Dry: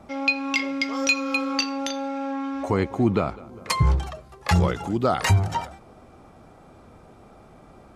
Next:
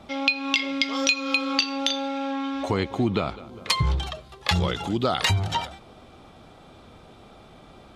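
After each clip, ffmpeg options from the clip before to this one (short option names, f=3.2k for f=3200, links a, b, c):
-af "equalizer=f=3.5k:w=1.6:g=13.5,acompressor=threshold=-19dB:ratio=4"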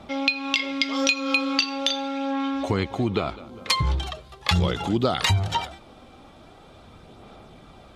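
-af "aphaser=in_gain=1:out_gain=1:delay=3.8:decay=0.27:speed=0.41:type=sinusoidal"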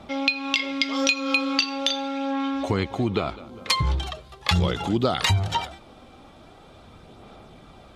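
-af anull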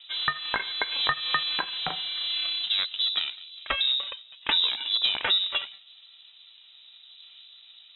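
-af "aeval=exprs='val(0)*sin(2*PI*290*n/s)':c=same,adynamicsmooth=sensitivity=3.5:basefreq=1.7k,lowpass=f=3.4k:t=q:w=0.5098,lowpass=f=3.4k:t=q:w=0.6013,lowpass=f=3.4k:t=q:w=0.9,lowpass=f=3.4k:t=q:w=2.563,afreqshift=-4000"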